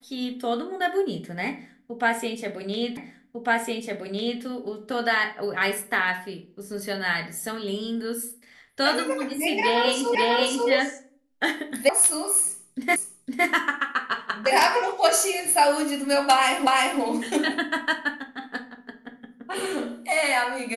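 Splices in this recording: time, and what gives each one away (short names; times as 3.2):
2.97 repeat of the last 1.45 s
10.15 repeat of the last 0.54 s
11.89 sound cut off
12.96 repeat of the last 0.51 s
16.67 repeat of the last 0.34 s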